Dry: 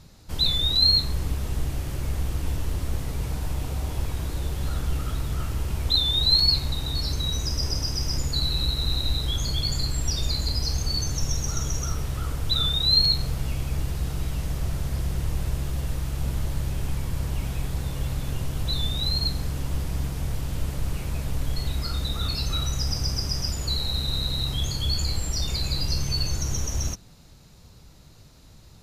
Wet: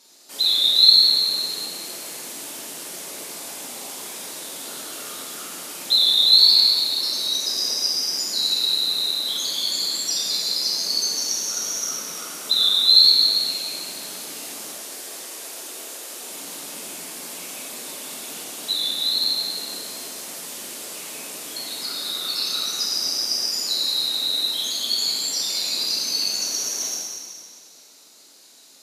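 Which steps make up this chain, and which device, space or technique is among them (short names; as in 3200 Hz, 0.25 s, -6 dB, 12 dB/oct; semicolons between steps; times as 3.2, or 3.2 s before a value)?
LPF 11000 Hz 12 dB/oct; pre-emphasis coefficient 0.8; 14.7–16.31 Chebyshev high-pass 240 Hz, order 2; dynamic EQ 7300 Hz, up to -4 dB, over -49 dBFS, Q 2.1; whispering ghost (whisperiser; HPF 320 Hz 24 dB/oct; reverb RT60 2.1 s, pre-delay 3 ms, DRR -4 dB); gain +7.5 dB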